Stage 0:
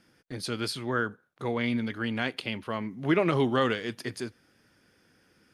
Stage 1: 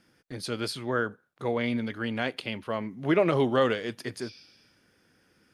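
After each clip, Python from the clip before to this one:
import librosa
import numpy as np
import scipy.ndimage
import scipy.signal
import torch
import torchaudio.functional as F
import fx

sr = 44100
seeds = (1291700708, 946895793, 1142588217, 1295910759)

y = fx.spec_repair(x, sr, seeds[0], start_s=4.24, length_s=0.61, low_hz=2200.0, high_hz=6100.0, source='both')
y = fx.dynamic_eq(y, sr, hz=570.0, q=1.8, threshold_db=-42.0, ratio=4.0, max_db=6)
y = y * 10.0 ** (-1.0 / 20.0)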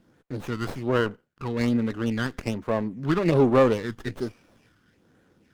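y = fx.phaser_stages(x, sr, stages=6, low_hz=590.0, high_hz=4500.0, hz=1.2, feedback_pct=25)
y = fx.running_max(y, sr, window=9)
y = y * 10.0 ** (5.0 / 20.0)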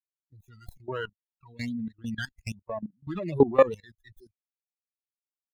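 y = fx.bin_expand(x, sr, power=3.0)
y = fx.level_steps(y, sr, step_db=19)
y = y * 10.0 ** (6.0 / 20.0)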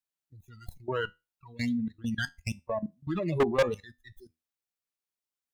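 y = fx.comb_fb(x, sr, f0_hz=81.0, decay_s=0.24, harmonics='all', damping=0.0, mix_pct=40)
y = np.clip(y, -10.0 ** (-24.0 / 20.0), 10.0 ** (-24.0 / 20.0))
y = y * 10.0 ** (5.0 / 20.0)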